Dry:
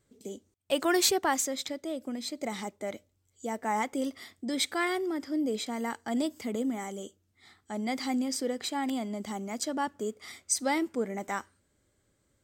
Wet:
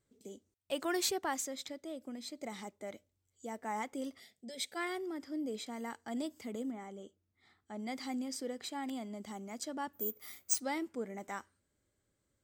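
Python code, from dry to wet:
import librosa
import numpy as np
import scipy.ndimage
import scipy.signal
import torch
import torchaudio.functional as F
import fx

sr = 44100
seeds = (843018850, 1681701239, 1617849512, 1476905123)

y = fx.fixed_phaser(x, sr, hz=300.0, stages=6, at=(4.19, 4.75), fade=0.02)
y = fx.lowpass(y, sr, hz=fx.line((6.7, 1800.0), (7.78, 3600.0)), slope=6, at=(6.7, 7.78), fade=0.02)
y = fx.resample_bad(y, sr, factor=3, down='none', up='zero_stuff', at=(9.93, 10.6))
y = y * 10.0 ** (-8.5 / 20.0)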